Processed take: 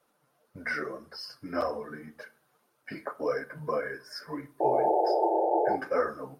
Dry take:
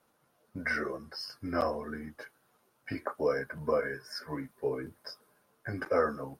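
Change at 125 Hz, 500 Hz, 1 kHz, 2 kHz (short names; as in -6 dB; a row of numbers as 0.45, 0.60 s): -3.5, +4.0, +9.5, -0.5 dB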